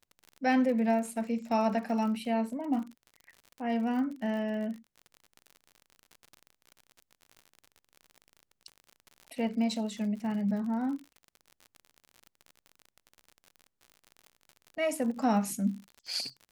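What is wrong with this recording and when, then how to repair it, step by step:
crackle 59 per s -39 dBFS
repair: de-click

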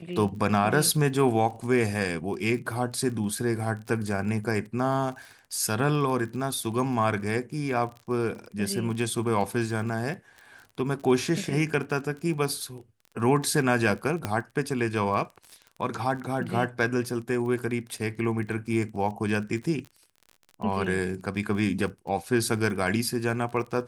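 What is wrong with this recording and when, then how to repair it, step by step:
crackle 29 per s -35 dBFS
14.25 s: pop -13 dBFS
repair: de-click

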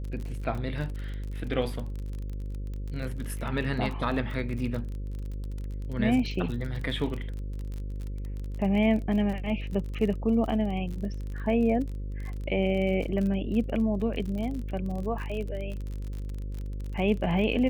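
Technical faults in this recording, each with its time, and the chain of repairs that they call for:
buzz 50 Hz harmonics 11 -34 dBFS
crackle 38 per s -34 dBFS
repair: de-click; de-hum 50 Hz, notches 11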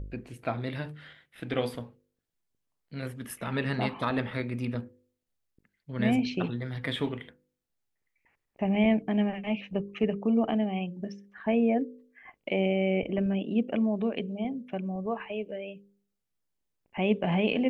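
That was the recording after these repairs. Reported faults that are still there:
nothing left

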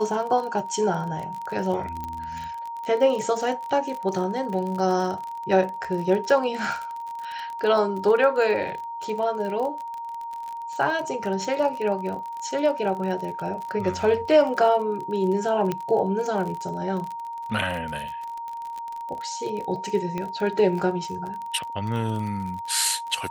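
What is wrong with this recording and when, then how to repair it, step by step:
crackle 35 per s -30 dBFS
whine 930 Hz -31 dBFS
2.04 s: pop -19 dBFS
15.72 s: pop -13 dBFS
20.18 s: pop -17 dBFS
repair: de-click; band-stop 930 Hz, Q 30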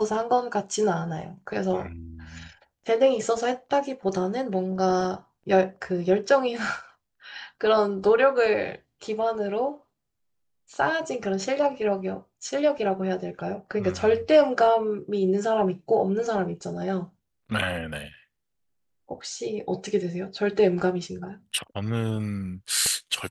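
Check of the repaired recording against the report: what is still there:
15.72 s: pop
20.18 s: pop

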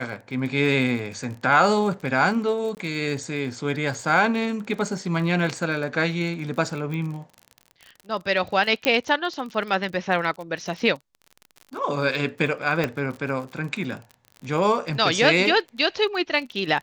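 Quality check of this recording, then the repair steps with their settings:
crackle 39 per s -32 dBFS
2.75–2.77 s: dropout 19 ms
6.94 s: pop -20 dBFS
8.85 s: pop -6 dBFS
12.84 s: pop -10 dBFS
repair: de-click; interpolate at 2.75 s, 19 ms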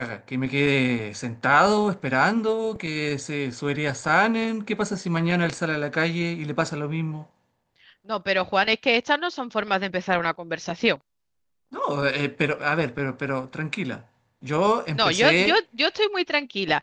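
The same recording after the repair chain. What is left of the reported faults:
8.85 s: pop

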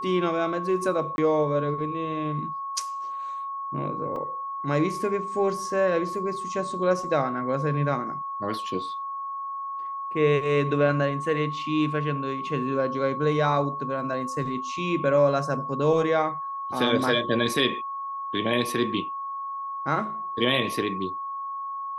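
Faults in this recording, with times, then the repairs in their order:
whine 1.1 kHz -30 dBFS
1.16–1.18 s: dropout 21 ms
4.16 s: dropout 2.8 ms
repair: band-stop 1.1 kHz, Q 30; interpolate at 1.16 s, 21 ms; interpolate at 4.16 s, 2.8 ms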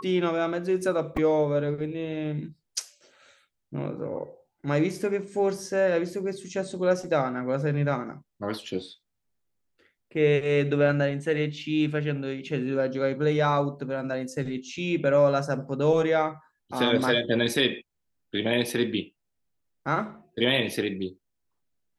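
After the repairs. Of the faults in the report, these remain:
nothing left

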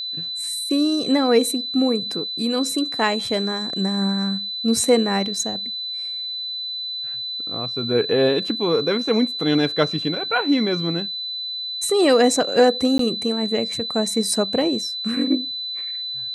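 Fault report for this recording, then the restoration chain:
whine 4 kHz -26 dBFS
12.98–12.99 s: dropout 13 ms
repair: band-stop 4 kHz, Q 30; interpolate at 12.98 s, 13 ms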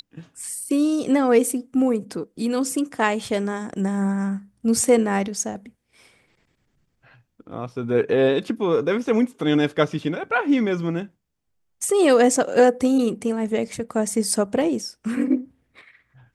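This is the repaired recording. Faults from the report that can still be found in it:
nothing left

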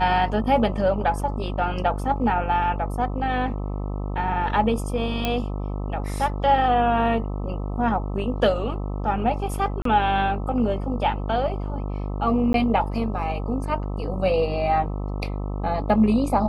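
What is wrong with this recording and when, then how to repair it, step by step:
buzz 50 Hz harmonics 26 -28 dBFS
5.25 s: pop -9 dBFS
9.82–9.85 s: dropout 33 ms
12.53–12.54 s: dropout 12 ms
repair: de-click; de-hum 50 Hz, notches 26; interpolate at 9.82 s, 33 ms; interpolate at 12.53 s, 12 ms

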